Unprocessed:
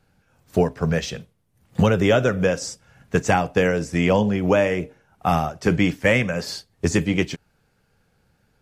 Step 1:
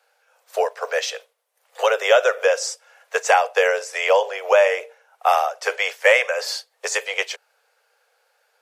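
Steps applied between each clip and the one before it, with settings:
Butterworth high-pass 470 Hz 72 dB per octave
level +4.5 dB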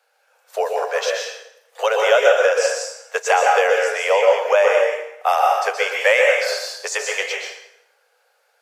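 dense smooth reverb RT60 0.82 s, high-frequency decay 0.8×, pre-delay 110 ms, DRR 0 dB
level −1 dB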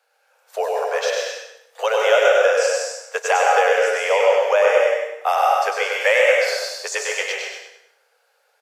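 repeating echo 99 ms, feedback 27%, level −4 dB
level −2 dB

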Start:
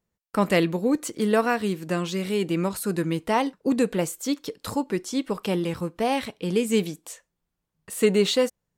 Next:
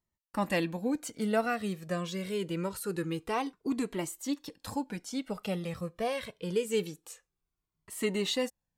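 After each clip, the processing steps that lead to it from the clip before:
flanger whose copies keep moving one way falling 0.25 Hz
level −3 dB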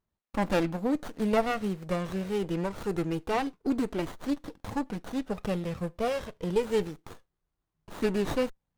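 windowed peak hold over 17 samples
level +4 dB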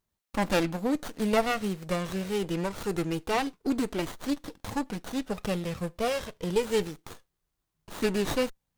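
high-shelf EQ 2,400 Hz +8 dB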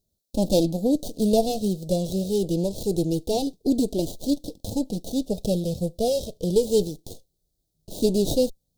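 elliptic band-stop filter 630–3,900 Hz, stop band 70 dB
level +7 dB

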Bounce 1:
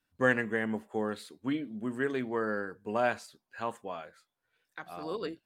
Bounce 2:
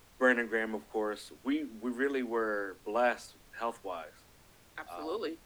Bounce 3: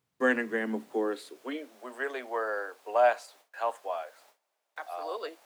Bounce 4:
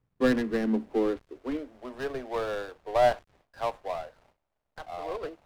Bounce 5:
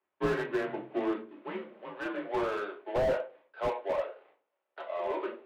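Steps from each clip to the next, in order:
Butterworth high-pass 230 Hz 96 dB per octave; background noise pink −60 dBFS
noise gate with hold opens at −47 dBFS; high-pass filter sweep 130 Hz → 650 Hz, 0:00.35–0:01.76
gap after every zero crossing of 0.19 ms; RIAA equalisation playback
rectangular room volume 220 cubic metres, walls furnished, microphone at 1.7 metres; single-sideband voice off tune −90 Hz 500–3,400 Hz; slew-rate limiting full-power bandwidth 33 Hz

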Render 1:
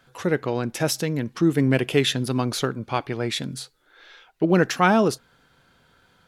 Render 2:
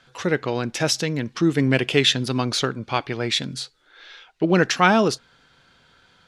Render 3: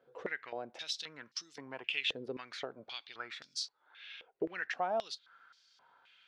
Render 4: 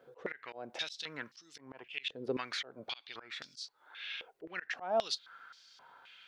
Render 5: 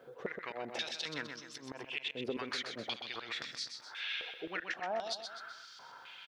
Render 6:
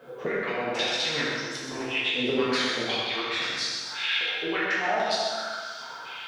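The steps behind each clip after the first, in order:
low-pass filter 5,700 Hz 12 dB per octave; high-shelf EQ 2,100 Hz +9 dB
downward compressor 2.5 to 1, threshold −31 dBFS, peak gain reduction 13.5 dB; band-pass on a step sequencer 3.8 Hz 470–5,300 Hz; level +2 dB
volume swells 267 ms; level +7.5 dB
downward compressor 6 to 1, threshold −40 dBFS, peak gain reduction 14 dB; on a send: repeating echo 127 ms, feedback 46%, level −7 dB; on the sum: level +5 dB
dense smooth reverb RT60 1.5 s, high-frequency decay 0.8×, DRR −7.5 dB; level +5 dB

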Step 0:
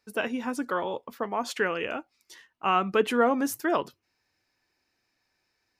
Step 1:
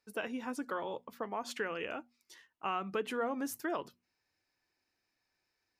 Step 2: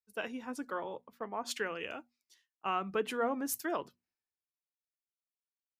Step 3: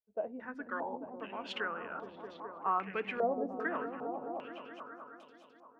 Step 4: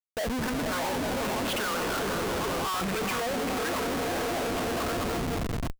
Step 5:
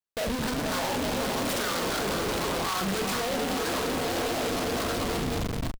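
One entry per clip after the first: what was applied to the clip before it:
mains-hum notches 60/120/180/240 Hz; downward compressor 2.5 to 1, threshold −26 dBFS, peak gain reduction 6.5 dB; level −7 dB
multiband upward and downward expander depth 100%
on a send: echo whose low-pass opens from repeat to repeat 211 ms, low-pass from 200 Hz, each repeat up 1 octave, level 0 dB; on the sum: low-pass on a step sequencer 2.5 Hz 640–3,700 Hz; level −5.5 dB
feedback delay with all-pass diffusion 458 ms, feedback 47%, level −9.5 dB; comparator with hysteresis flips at −48.5 dBFS; level +9 dB
double-tracking delay 41 ms −6.5 dB; short delay modulated by noise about 2,500 Hz, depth 0.09 ms

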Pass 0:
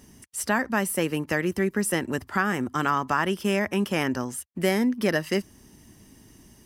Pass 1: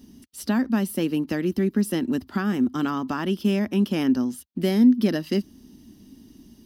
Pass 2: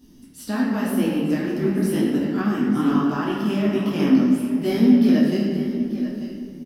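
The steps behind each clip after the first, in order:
octave-band graphic EQ 125/250/500/1,000/2,000/4,000/8,000 Hz −6/+11/−5/−5/−9/+7/−11 dB
single-tap delay 890 ms −13 dB; convolution reverb RT60 2.3 s, pre-delay 6 ms, DRR −4.5 dB; micro pitch shift up and down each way 35 cents

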